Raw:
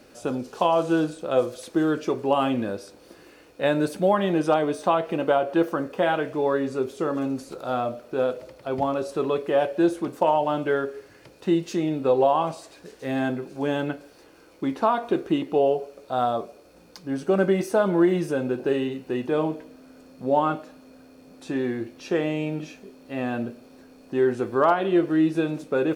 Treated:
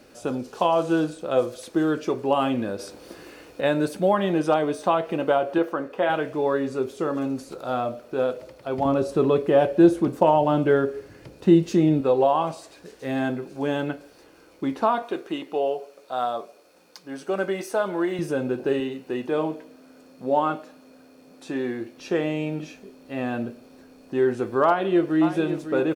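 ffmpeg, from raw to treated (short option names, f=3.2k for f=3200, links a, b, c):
-filter_complex "[0:a]asettb=1/sr,asplit=3[a][b][c];[a]atrim=end=2.794[d];[b]atrim=start=2.79:end=3.61,asetpts=PTS-STARTPTS,afade=t=in:d=0.004:c=qsin,afade=t=out:st=0.816:d=0.004:c=qsin,acontrast=55[e];[c]atrim=start=3.606[f];[d][e]acrossfade=d=0.004:c1=hsin:c2=qsin[g];[g][f]acrossfade=d=0.004:c1=qsin:c2=hsin,asettb=1/sr,asplit=3[h][i][j];[h]atrim=end=5.584[k];[i]atrim=start=5.58:end=6.1,asetpts=PTS-STARTPTS,afade=t=in:d=0.004:c=qsin,afade=t=out:st=0.516:d=0.004:c=qsin,bass=f=250:g=-8,treble=f=4k:g=-8[l];[j]atrim=start=6.096[m];[k][l]acrossfade=d=0.004:c1=hsin:c2=qsin[n];[n][m]acrossfade=d=0.004:c1=qsin:c2=hsin,asettb=1/sr,asplit=3[o][p][q];[o]atrim=end=8.854[r];[p]atrim=start=8.85:end=12.01,asetpts=PTS-STARTPTS,afade=t=in:d=0.004:c=qsin,afade=t=out:st=3.156:d=0.004:c=qsin,lowshelf=f=370:g=10.5[s];[q]atrim=start=12.006[t];[r][s]acrossfade=d=0.004:c1=hsin:c2=qsin[u];[u][t]acrossfade=d=0.004:c1=qsin:c2=hsin,asettb=1/sr,asplit=3[v][w][x];[v]atrim=end=15.024[y];[w]atrim=start=15.02:end=18.19,asetpts=PTS-STARTPTS,afade=t=in:d=0.004:c=qsin,afade=t=out:st=3.166:d=0.004:c=qsin,highpass=f=610:p=1[z];[x]atrim=start=18.186[aa];[y][z]acrossfade=d=0.004:c1=hsin:c2=qsin[ab];[ab][aa]acrossfade=d=0.004:c1=qsin:c2=hsin,asettb=1/sr,asplit=3[ac][ad][ae];[ac]atrim=end=18.804[af];[ad]atrim=start=18.8:end=21.98,asetpts=PTS-STARTPTS,afade=t=in:d=0.004:c=qsin,afade=t=out:st=3.176:d=0.004:c=qsin,highpass=f=190:p=1[ag];[ae]atrim=start=21.976[ah];[af][ag]acrossfade=d=0.004:c1=hsin:c2=qsin[ai];[ai][ah]acrossfade=d=0.004:c1=qsin:c2=hsin,asplit=2[aj][ak];[ak]afade=t=in:st=24.66:d=0.01,afade=t=out:st=25.25:d=0.01,aecho=0:1:550|1100:0.316228|0.0474342[al];[aj][al]amix=inputs=2:normalize=0"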